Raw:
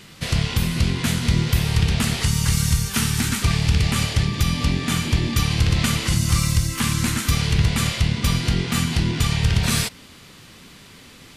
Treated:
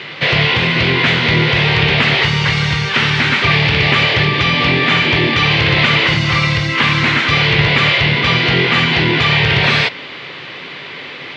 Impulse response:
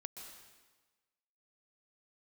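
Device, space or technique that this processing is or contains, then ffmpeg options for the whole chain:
overdrive pedal into a guitar cabinet: -filter_complex "[0:a]asplit=2[a][b];[b]highpass=f=720:p=1,volume=20dB,asoftclip=type=tanh:threshold=-7dB[c];[a][c]amix=inputs=2:normalize=0,lowpass=f=5.1k:p=1,volume=-6dB,highpass=110,equalizer=f=140:t=q:w=4:g=6,equalizer=f=210:t=q:w=4:g=-8,equalizer=f=390:t=q:w=4:g=4,equalizer=f=550:t=q:w=4:g=3,equalizer=f=1.3k:t=q:w=4:g=-3,equalizer=f=2.1k:t=q:w=4:g=4,lowpass=f=3.7k:w=0.5412,lowpass=f=3.7k:w=1.3066,volume=5dB"

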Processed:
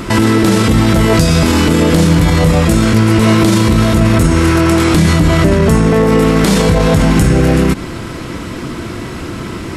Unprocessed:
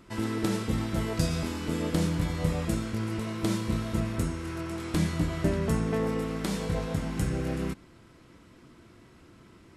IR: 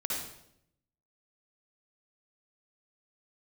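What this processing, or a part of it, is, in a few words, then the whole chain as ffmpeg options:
loud club master: -af "acompressor=threshold=-33dB:ratio=1.5,asoftclip=type=hard:threshold=-20.5dB,alimiter=level_in=32dB:limit=-1dB:release=50:level=0:latency=1,volume=-1dB"

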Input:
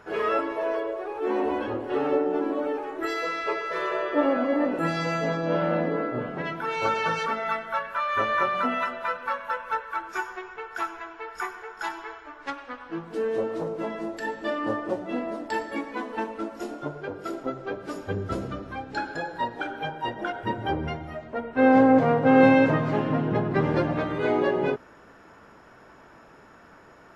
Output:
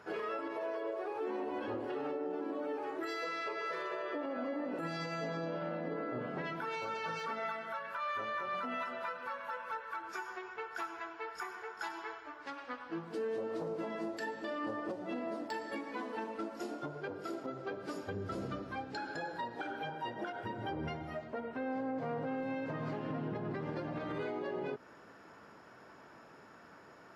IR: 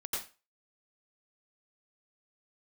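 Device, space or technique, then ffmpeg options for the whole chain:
broadcast voice chain: -af "highpass=100,deesser=0.9,acompressor=threshold=-28dB:ratio=4,equalizer=f=4.7k:t=o:w=0.31:g=5,alimiter=level_in=1dB:limit=-24dB:level=0:latency=1:release=83,volume=-1dB,volume=-5dB"

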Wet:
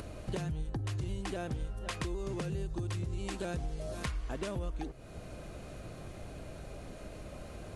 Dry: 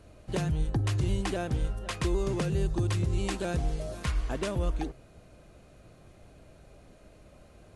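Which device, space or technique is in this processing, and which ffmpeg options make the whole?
upward and downward compression: -af "acompressor=mode=upward:threshold=-48dB:ratio=2.5,acompressor=threshold=-43dB:ratio=5,volume=7.5dB"

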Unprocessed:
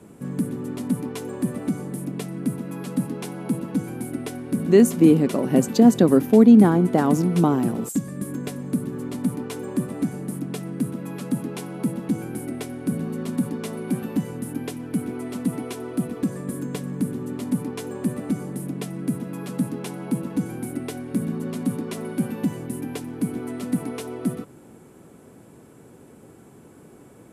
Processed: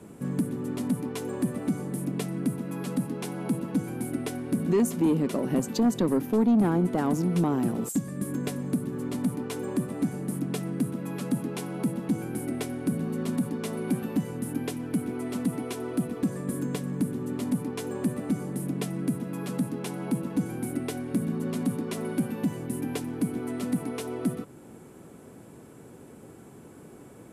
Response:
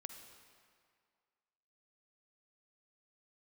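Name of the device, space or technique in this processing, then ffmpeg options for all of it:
soft clipper into limiter: -af "asoftclip=type=tanh:threshold=-9.5dB,alimiter=limit=-17dB:level=0:latency=1:release=483"

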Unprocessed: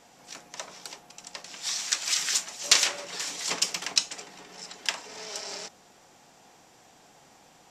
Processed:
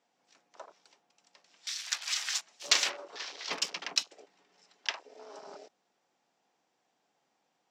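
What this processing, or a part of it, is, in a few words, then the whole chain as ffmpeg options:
over-cleaned archive recording: -af "highpass=200,lowpass=5.8k,afwtdn=0.0112,volume=-3.5dB"

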